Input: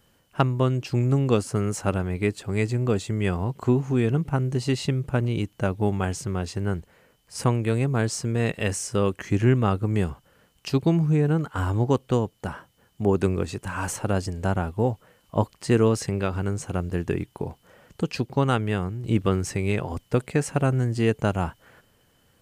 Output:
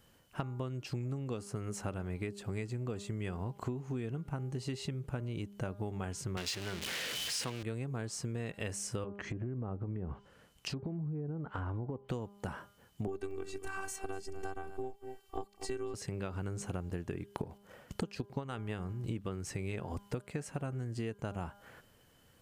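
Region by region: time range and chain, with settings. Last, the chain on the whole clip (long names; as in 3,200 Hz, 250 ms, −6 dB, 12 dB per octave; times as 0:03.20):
0:06.37–0:07.63: converter with a step at zero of −25.5 dBFS + meter weighting curve D
0:09.04–0:12.09: treble cut that deepens with the level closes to 840 Hz, closed at −19 dBFS + downward compressor, threshold −29 dBFS
0:13.07–0:15.94: phases set to zero 388 Hz + single-tap delay 240 ms −16.5 dB
0:17.33–0:18.93: noise gate −53 dBFS, range −7 dB + transient designer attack +11 dB, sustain +7 dB
whole clip: hum removal 201.9 Hz, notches 8; downward compressor 12 to 1, threshold −32 dBFS; level −2.5 dB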